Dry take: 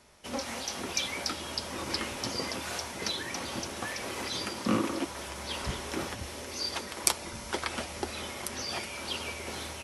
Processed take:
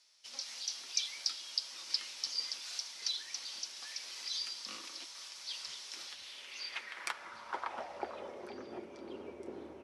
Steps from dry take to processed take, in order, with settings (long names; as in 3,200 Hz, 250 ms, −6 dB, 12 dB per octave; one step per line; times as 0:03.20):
band-pass filter sweep 4,800 Hz → 350 Hz, 0:05.99–0:08.66
echo through a band-pass that steps 472 ms, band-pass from 1,100 Hz, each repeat 0.7 octaves, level −11 dB
level +1 dB